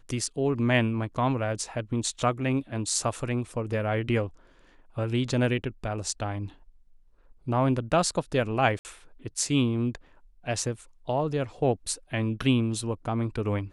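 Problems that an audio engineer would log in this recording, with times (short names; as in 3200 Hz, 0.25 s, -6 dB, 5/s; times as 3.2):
8.79–8.85 gap 59 ms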